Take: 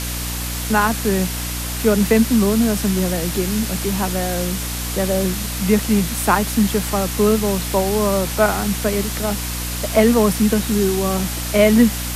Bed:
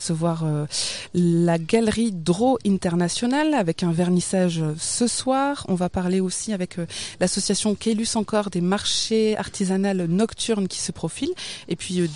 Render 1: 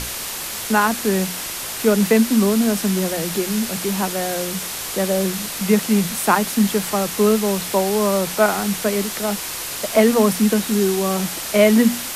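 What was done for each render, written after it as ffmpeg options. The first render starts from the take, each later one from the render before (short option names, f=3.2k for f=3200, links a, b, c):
-af "bandreject=f=60:t=h:w=6,bandreject=f=120:t=h:w=6,bandreject=f=180:t=h:w=6,bandreject=f=240:t=h:w=6,bandreject=f=300:t=h:w=6"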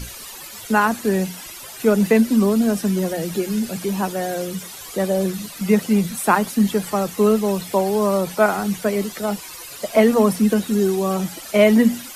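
-af "afftdn=nr=14:nf=-29"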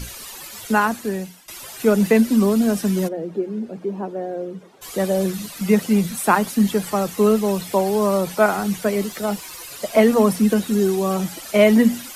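-filter_complex "[0:a]asplit=3[a][b][c];[a]afade=t=out:st=3.07:d=0.02[d];[b]bandpass=f=390:t=q:w=1.2,afade=t=in:st=3.07:d=0.02,afade=t=out:st=4.81:d=0.02[e];[c]afade=t=in:st=4.81:d=0.02[f];[d][e][f]amix=inputs=3:normalize=0,asettb=1/sr,asplit=3[g][h][i];[g]atrim=end=9.034[j];[h]atrim=start=9.03:end=9.67,asetpts=PTS-STARTPTS,afade=t=in:d=0.004:c=qsin,afade=t=out:st=0.636:d=0.004:c=qsin,aeval=exprs='val(0)*gte(abs(val(0)),0.00447)':c=same[k];[i]atrim=start=9.666[l];[j][k]acrossfade=d=0.004:c1=hsin:c2=qsin[m];[m][l]acrossfade=d=0.004:c1=qsin:c2=hsin,asplit=2[n][o];[n]atrim=end=1.48,asetpts=PTS-STARTPTS,afade=t=out:st=0.71:d=0.77:silence=0.11885[p];[o]atrim=start=1.48,asetpts=PTS-STARTPTS,afade=t=in:d=0.004:c=hsin:silence=0.11885[q];[p][q]concat=n=2:v=0:a=1"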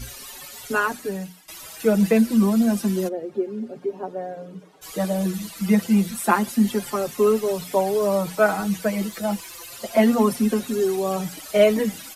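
-filter_complex "[0:a]asplit=2[a][b];[b]adelay=5.2,afreqshift=0.29[c];[a][c]amix=inputs=2:normalize=1"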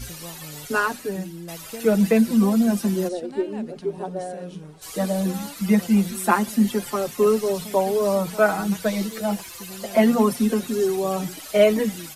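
-filter_complex "[1:a]volume=-18dB[a];[0:a][a]amix=inputs=2:normalize=0"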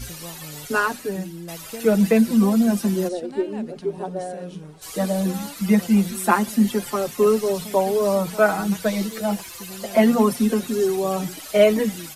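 -af "volume=1dB"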